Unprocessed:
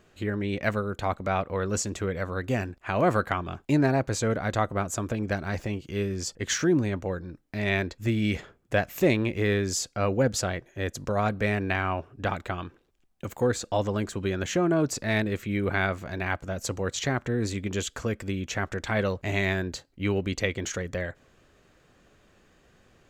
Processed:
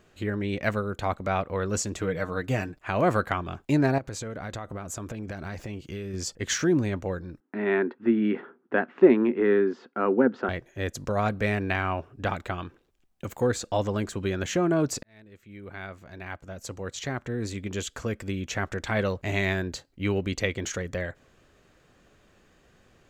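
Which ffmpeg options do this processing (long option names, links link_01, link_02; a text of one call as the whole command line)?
ffmpeg -i in.wav -filter_complex "[0:a]asettb=1/sr,asplit=3[link_01][link_02][link_03];[link_01]atrim=end=1.984[link_04];[link_02]atrim=start=1.98:end=2.83,asetpts=PTS-STARTPTS,afade=type=in:duration=0.004:curve=qsin,afade=type=out:start_time=0.846:duration=0.004:curve=qsin,aecho=1:1:6.5:0.54,atrim=end_sample=37485[link_05];[link_03]atrim=start=2.826[link_06];[link_04][link_05]acrossfade=duration=0.004:curve1=hsin:curve2=qsin[link_07];[link_07][link_06]acrossfade=duration=0.004:curve1=qsin:curve2=hsin,asettb=1/sr,asplit=3[link_08][link_09][link_10];[link_08]atrim=end=3.984[link_11];[link_09]atrim=start=3.98:end=6.14,asetpts=PTS-STARTPTS,afade=type=in:duration=0.004:curve=qsin,afade=type=out:start_time=2.156:duration=0.004:curve=qsin,acompressor=threshold=-31dB:ratio=12:attack=3.2:release=140:knee=1:detection=peak[link_12];[link_10]atrim=start=6.136[link_13];[link_11][link_12]acrossfade=duration=0.004:curve1=hsin:curve2=qsin[link_14];[link_14][link_13]acrossfade=duration=0.004:curve1=qsin:curve2=hsin,asettb=1/sr,asplit=3[link_15][link_16][link_17];[link_15]atrim=end=7.404[link_18];[link_16]atrim=start=7.4:end=10.49,asetpts=PTS-STARTPTS,afade=type=in:duration=0.004:curve=qsin,afade=type=out:start_time=3.086:duration=0.004:curve=qsin,highpass=frequency=210:width=0.5412,highpass=frequency=210:width=1.3066,equalizer=frequency=240:width_type=q:width=4:gain=9,equalizer=frequency=380:width_type=q:width=4:gain=9,equalizer=frequency=600:width_type=q:width=4:gain=-6,equalizer=frequency=930:width_type=q:width=4:gain=5,equalizer=frequency=1400:width_type=q:width=4:gain=6,equalizer=frequency=2300:width_type=q:width=4:gain=-7,lowpass=frequency=2400:width=0.5412,lowpass=frequency=2400:width=1.3066[link_19];[link_17]atrim=start=10.486[link_20];[link_18][link_19]acrossfade=duration=0.004:curve1=hsin:curve2=qsin[link_21];[link_21][link_20]acrossfade=duration=0.004:curve1=qsin:curve2=hsin,asplit=2[link_22][link_23];[link_22]atrim=end=15.03,asetpts=PTS-STARTPTS,afade=type=out:start_time=15.026:duration=0.004:curve=hsin[link_24];[link_23]atrim=start=15.03,asetpts=PTS-STARTPTS,afade=type=in:duration=3.53[link_25];[link_24][link_25]concat=n=2:v=0:a=1" out.wav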